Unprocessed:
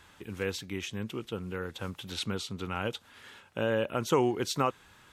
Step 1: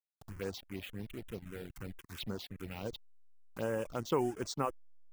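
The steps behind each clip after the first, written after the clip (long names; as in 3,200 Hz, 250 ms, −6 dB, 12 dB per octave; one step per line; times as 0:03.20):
hold until the input has moved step −35 dBFS
reverb reduction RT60 0.51 s
phaser swept by the level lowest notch 290 Hz, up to 4,100 Hz, full sweep at −27 dBFS
level −5 dB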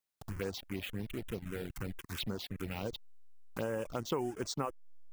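downward compressor 2.5 to 1, threshold −42 dBFS, peak gain reduction 11 dB
level +6.5 dB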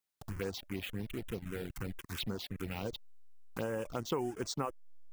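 notch filter 590 Hz, Q 18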